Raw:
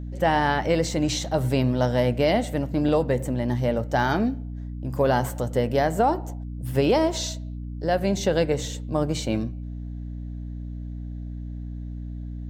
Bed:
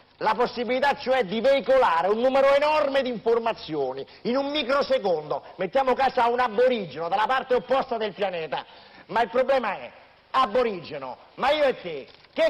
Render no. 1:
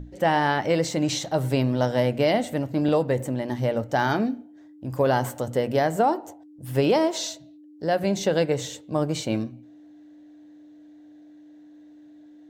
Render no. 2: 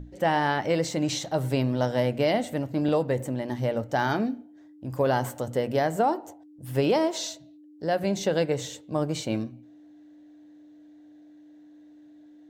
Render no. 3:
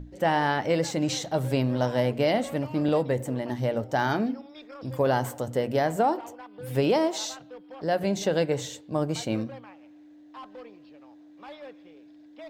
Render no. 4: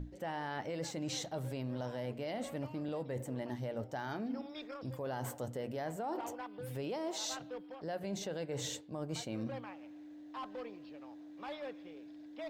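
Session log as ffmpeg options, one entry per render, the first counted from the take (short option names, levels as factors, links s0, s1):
-af "bandreject=f=60:t=h:w=6,bandreject=f=120:t=h:w=6,bandreject=f=180:t=h:w=6,bandreject=f=240:t=h:w=6"
-af "volume=0.75"
-filter_complex "[1:a]volume=0.075[s0];[0:a][s0]amix=inputs=2:normalize=0"
-af "alimiter=limit=0.1:level=0:latency=1:release=124,areverse,acompressor=threshold=0.0141:ratio=6,areverse"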